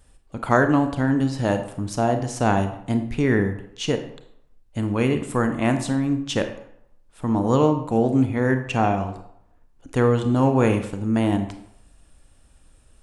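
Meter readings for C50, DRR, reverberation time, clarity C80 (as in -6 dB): 9.5 dB, 7.0 dB, 0.70 s, 12.0 dB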